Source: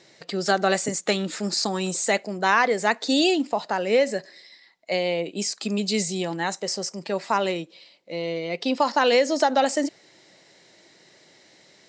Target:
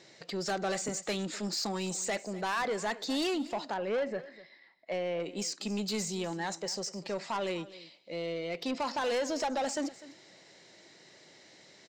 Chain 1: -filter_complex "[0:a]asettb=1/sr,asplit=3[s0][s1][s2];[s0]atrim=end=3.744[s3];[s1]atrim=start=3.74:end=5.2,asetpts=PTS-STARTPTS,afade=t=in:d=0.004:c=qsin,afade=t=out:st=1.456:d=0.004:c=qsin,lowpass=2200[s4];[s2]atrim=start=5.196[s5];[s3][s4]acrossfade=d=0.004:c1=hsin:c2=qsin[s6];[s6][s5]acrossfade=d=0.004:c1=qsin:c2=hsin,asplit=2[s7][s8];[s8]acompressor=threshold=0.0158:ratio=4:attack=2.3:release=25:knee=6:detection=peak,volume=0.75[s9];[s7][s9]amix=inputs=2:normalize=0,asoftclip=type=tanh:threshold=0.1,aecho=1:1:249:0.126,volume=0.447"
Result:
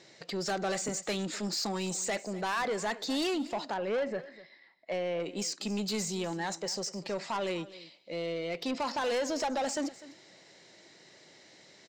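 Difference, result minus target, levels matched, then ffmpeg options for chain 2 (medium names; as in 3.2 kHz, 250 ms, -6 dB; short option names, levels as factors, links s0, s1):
compression: peak gain reduction -8 dB
-filter_complex "[0:a]asettb=1/sr,asplit=3[s0][s1][s2];[s0]atrim=end=3.744[s3];[s1]atrim=start=3.74:end=5.2,asetpts=PTS-STARTPTS,afade=t=in:d=0.004:c=qsin,afade=t=out:st=1.456:d=0.004:c=qsin,lowpass=2200[s4];[s2]atrim=start=5.196[s5];[s3][s4]acrossfade=d=0.004:c1=hsin:c2=qsin[s6];[s6][s5]acrossfade=d=0.004:c1=qsin:c2=hsin,asplit=2[s7][s8];[s8]acompressor=threshold=0.00473:ratio=4:attack=2.3:release=25:knee=6:detection=peak,volume=0.75[s9];[s7][s9]amix=inputs=2:normalize=0,asoftclip=type=tanh:threshold=0.1,aecho=1:1:249:0.126,volume=0.447"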